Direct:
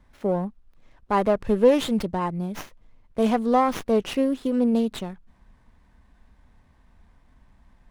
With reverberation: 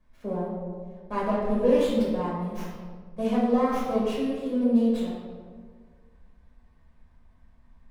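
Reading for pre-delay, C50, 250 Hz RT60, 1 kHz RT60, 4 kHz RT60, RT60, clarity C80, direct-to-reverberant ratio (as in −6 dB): 5 ms, −0.5 dB, 1.9 s, 1.5 s, 0.90 s, 1.7 s, 2.5 dB, −7.0 dB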